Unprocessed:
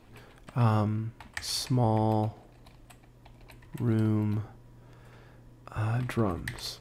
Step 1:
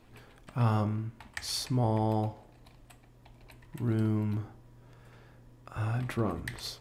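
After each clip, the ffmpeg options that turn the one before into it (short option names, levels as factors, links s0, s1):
-af "bandreject=f=45.09:t=h:w=4,bandreject=f=90.18:t=h:w=4,bandreject=f=135.27:t=h:w=4,bandreject=f=180.36:t=h:w=4,bandreject=f=225.45:t=h:w=4,bandreject=f=270.54:t=h:w=4,bandreject=f=315.63:t=h:w=4,bandreject=f=360.72:t=h:w=4,bandreject=f=405.81:t=h:w=4,bandreject=f=450.9:t=h:w=4,bandreject=f=495.99:t=h:w=4,bandreject=f=541.08:t=h:w=4,bandreject=f=586.17:t=h:w=4,bandreject=f=631.26:t=h:w=4,bandreject=f=676.35:t=h:w=4,bandreject=f=721.44:t=h:w=4,bandreject=f=766.53:t=h:w=4,bandreject=f=811.62:t=h:w=4,bandreject=f=856.71:t=h:w=4,bandreject=f=901.8:t=h:w=4,bandreject=f=946.89:t=h:w=4,bandreject=f=991.98:t=h:w=4,bandreject=f=1037.07:t=h:w=4,bandreject=f=1082.16:t=h:w=4,bandreject=f=1127.25:t=h:w=4,bandreject=f=1172.34:t=h:w=4,bandreject=f=1217.43:t=h:w=4,volume=0.794"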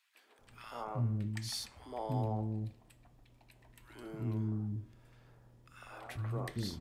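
-filter_complex "[0:a]acrossover=split=360|1400[s0][s1][s2];[s1]adelay=150[s3];[s0]adelay=390[s4];[s4][s3][s2]amix=inputs=3:normalize=0,volume=0.501"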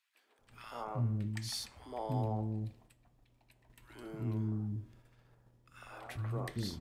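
-af "agate=range=0.501:threshold=0.00112:ratio=16:detection=peak"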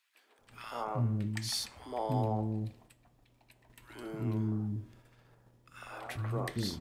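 -af "lowshelf=f=110:g=-6.5,volume=1.78"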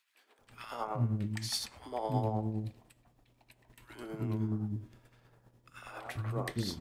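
-af "tremolo=f=9.7:d=0.49,volume=1.19"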